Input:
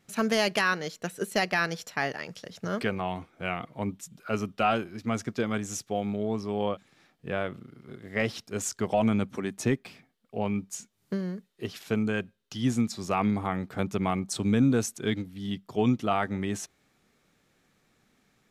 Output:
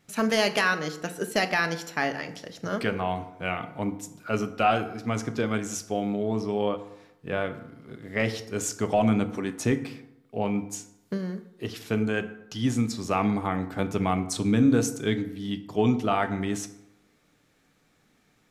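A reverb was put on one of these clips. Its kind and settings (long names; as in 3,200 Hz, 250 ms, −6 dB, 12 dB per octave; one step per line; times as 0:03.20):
feedback delay network reverb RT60 0.86 s, low-frequency decay 1×, high-frequency decay 0.55×, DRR 8 dB
level +1.5 dB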